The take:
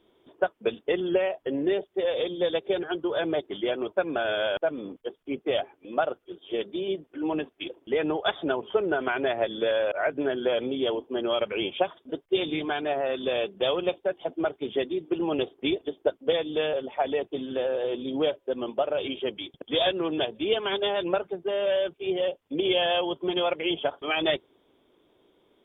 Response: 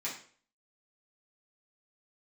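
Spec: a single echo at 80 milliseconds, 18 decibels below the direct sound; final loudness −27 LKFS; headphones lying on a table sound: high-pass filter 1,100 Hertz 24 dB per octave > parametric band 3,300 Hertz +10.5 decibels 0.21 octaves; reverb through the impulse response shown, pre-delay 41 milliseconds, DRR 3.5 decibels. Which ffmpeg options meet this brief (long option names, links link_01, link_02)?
-filter_complex "[0:a]aecho=1:1:80:0.126,asplit=2[link_01][link_02];[1:a]atrim=start_sample=2205,adelay=41[link_03];[link_02][link_03]afir=irnorm=-1:irlink=0,volume=-6.5dB[link_04];[link_01][link_04]amix=inputs=2:normalize=0,highpass=frequency=1100:width=0.5412,highpass=frequency=1100:width=1.3066,equalizer=frequency=3300:width_type=o:width=0.21:gain=10.5,volume=0.5dB"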